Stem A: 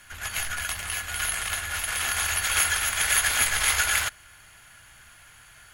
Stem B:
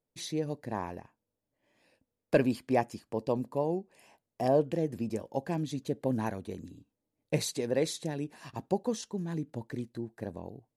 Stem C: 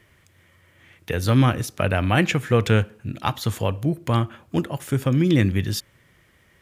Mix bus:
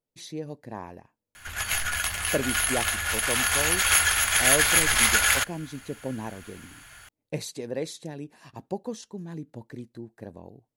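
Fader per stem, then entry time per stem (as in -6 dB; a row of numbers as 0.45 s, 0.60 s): +2.5 dB, -2.5 dB, mute; 1.35 s, 0.00 s, mute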